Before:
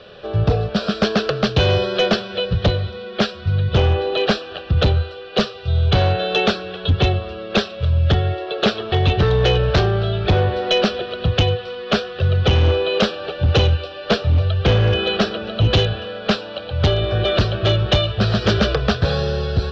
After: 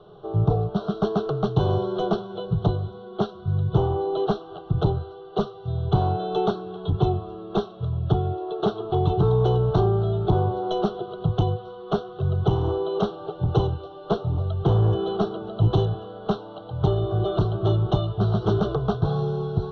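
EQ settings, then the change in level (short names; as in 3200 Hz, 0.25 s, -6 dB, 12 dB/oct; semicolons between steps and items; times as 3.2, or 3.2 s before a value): running mean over 18 samples; fixed phaser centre 360 Hz, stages 8; 0.0 dB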